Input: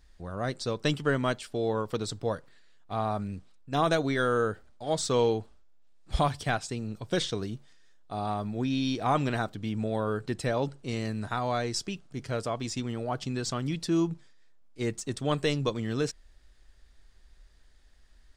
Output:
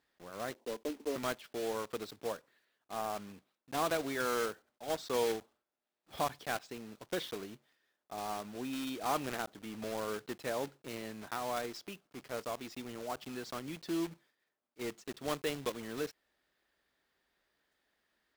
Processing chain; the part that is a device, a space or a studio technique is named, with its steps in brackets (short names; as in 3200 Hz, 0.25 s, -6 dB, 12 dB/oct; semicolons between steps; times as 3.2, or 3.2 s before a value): 0.54–1.16 Chebyshev band-pass 220–1000 Hz, order 5; early digital voice recorder (BPF 270–3400 Hz; block floating point 3-bit); gain -7 dB